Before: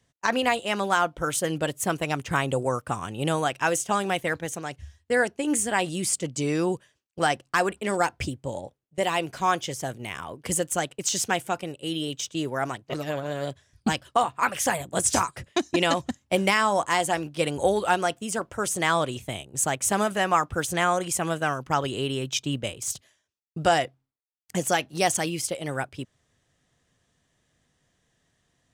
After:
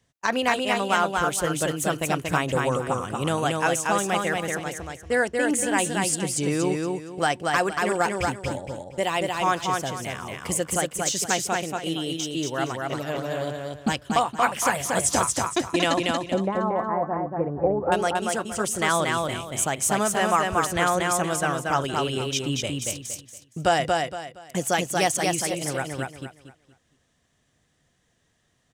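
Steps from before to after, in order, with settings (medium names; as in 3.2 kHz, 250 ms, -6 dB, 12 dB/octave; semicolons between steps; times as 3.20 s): 16.24–17.92 s: Gaussian low-pass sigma 7.4 samples; feedback delay 233 ms, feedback 29%, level -3 dB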